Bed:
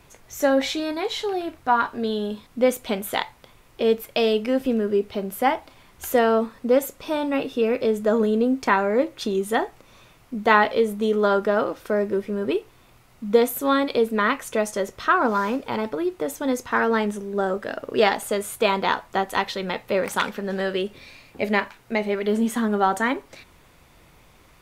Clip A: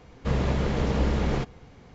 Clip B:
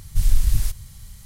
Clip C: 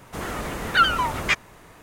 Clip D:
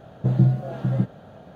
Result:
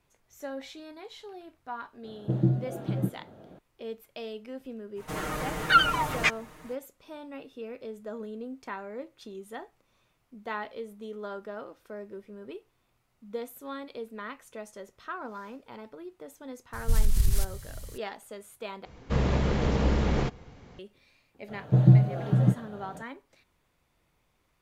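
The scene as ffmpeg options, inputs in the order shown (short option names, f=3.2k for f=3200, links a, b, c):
-filter_complex "[4:a]asplit=2[a][b];[0:a]volume=-18.5dB[c];[a]equalizer=f=330:w=1.5:g=11[d];[3:a]aecho=1:1:6.5:0.71[e];[2:a]acompressor=threshold=-15dB:ratio=6:attack=3.2:release=140:knee=1:detection=peak[f];[b]aecho=1:1:6.7:0.32[g];[c]asplit=2[h][i];[h]atrim=end=18.854[j];[1:a]atrim=end=1.94,asetpts=PTS-STARTPTS,volume=-0.5dB[k];[i]atrim=start=20.786[l];[d]atrim=end=1.55,asetpts=PTS-STARTPTS,volume=-9dB,afade=t=in:d=0.004:c=hsin,afade=t=out:st=1.546:d=0.004:c=hsin,adelay=2040[m];[e]atrim=end=1.82,asetpts=PTS-STARTPTS,volume=-4.5dB,afade=t=in:d=0.05,afade=t=out:st=1.77:d=0.05,adelay=4950[n];[f]atrim=end=1.25,asetpts=PTS-STARTPTS,volume=-1dB,afade=t=in:d=0.004:c=hsin,afade=t=out:st=1.246:d=0.004:c=hsin,adelay=16730[o];[g]atrim=end=1.55,asetpts=PTS-STARTPTS,volume=-1dB,afade=t=in:d=0.004:c=hsin,afade=t=out:st=1.546:d=0.004:c=hsin,adelay=947268S[p];[j][k]acrossfade=d=0.004:c1=hsin:c2=hsin[q];[q][l]acrossfade=d=0.004:c1=hsin:c2=hsin[r];[r][m][n][o][p]amix=inputs=5:normalize=0"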